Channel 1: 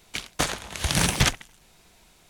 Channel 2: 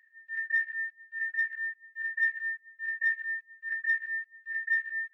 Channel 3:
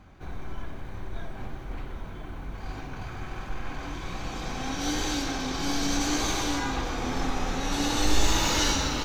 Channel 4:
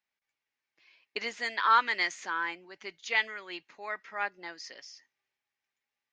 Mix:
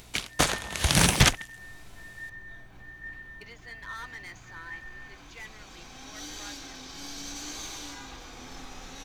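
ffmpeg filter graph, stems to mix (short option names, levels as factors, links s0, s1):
-filter_complex "[0:a]volume=1.19[s0];[1:a]aeval=exprs='val(0)+0.00891*(sin(2*PI*60*n/s)+sin(2*PI*2*60*n/s)/2+sin(2*PI*3*60*n/s)/3+sin(2*PI*4*60*n/s)/4+sin(2*PI*5*60*n/s)/5)':c=same,volume=0.178,asplit=2[s1][s2];[s2]volume=0.531[s3];[2:a]highshelf=f=2100:g=10.5,adelay=1350,volume=0.15[s4];[3:a]volume=21.1,asoftclip=hard,volume=0.0473,adelay=2250,volume=0.224[s5];[s3]aecho=0:1:107:1[s6];[s0][s1][s4][s5][s6]amix=inputs=5:normalize=0,acompressor=mode=upward:threshold=0.00501:ratio=2.5"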